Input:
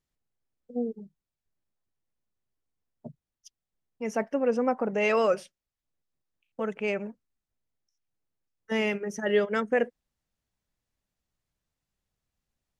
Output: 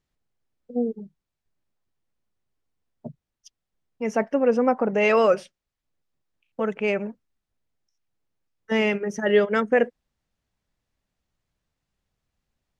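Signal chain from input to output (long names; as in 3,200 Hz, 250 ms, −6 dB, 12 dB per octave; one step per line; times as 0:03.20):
high-shelf EQ 8,300 Hz −12 dB
level +5.5 dB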